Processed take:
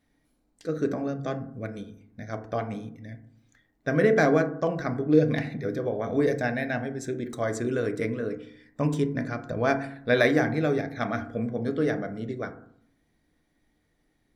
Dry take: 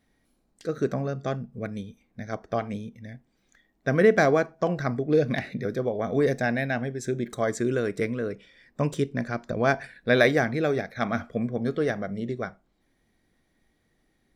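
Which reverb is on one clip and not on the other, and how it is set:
feedback delay network reverb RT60 0.62 s, low-frequency decay 1.45×, high-frequency decay 0.25×, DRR 6.5 dB
level −2.5 dB

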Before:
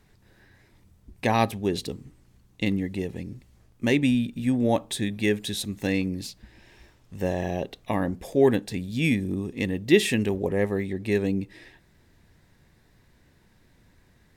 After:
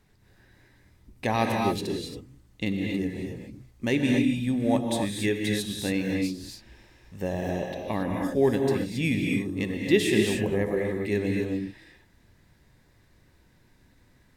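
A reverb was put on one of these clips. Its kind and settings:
reverb whose tail is shaped and stops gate 300 ms rising, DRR 0.5 dB
level −3.5 dB

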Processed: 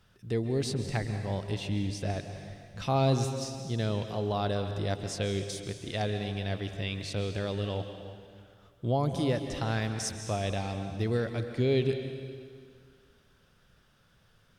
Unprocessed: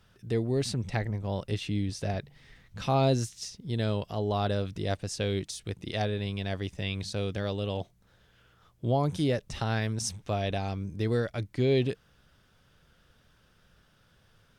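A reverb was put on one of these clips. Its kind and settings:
dense smooth reverb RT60 2 s, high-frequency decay 0.95×, pre-delay 120 ms, DRR 7 dB
level −1.5 dB

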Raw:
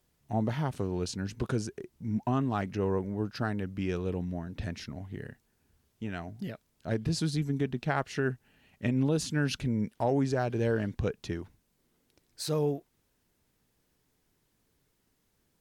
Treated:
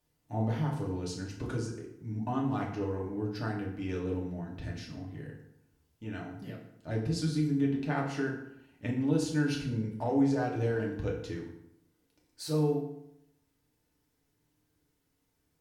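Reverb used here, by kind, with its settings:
feedback delay network reverb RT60 0.79 s, low-frequency decay 1.1×, high-frequency decay 0.7×, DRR −2.5 dB
level −7.5 dB

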